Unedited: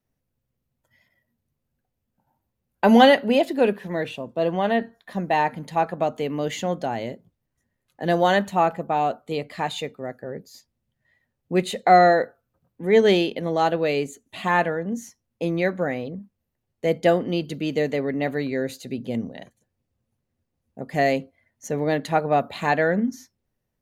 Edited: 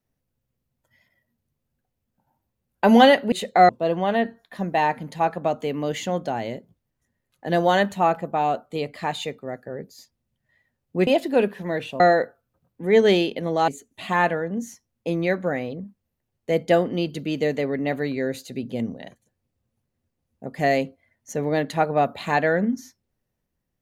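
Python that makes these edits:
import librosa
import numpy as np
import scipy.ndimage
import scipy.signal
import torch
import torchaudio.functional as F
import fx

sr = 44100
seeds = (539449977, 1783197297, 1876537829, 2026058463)

y = fx.edit(x, sr, fx.swap(start_s=3.32, length_s=0.93, other_s=11.63, other_length_s=0.37),
    fx.cut(start_s=13.68, length_s=0.35), tone=tone)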